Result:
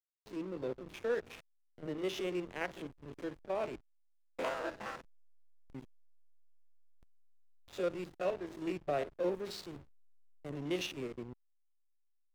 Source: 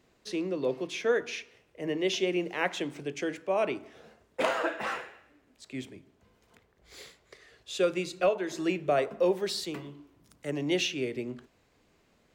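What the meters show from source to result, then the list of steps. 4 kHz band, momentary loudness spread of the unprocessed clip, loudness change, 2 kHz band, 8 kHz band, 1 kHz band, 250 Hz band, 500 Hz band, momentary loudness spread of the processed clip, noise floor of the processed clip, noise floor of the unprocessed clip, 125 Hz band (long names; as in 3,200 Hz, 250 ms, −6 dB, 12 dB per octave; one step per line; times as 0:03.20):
−11.5 dB, 14 LU, −8.5 dB, −10.5 dB, −13.0 dB, −9.0 dB, −8.5 dB, −8.5 dB, 16 LU, −73 dBFS, −68 dBFS, −6.5 dB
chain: spectrum averaged block by block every 50 ms
slack as between gear wheels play −31.5 dBFS
level −6 dB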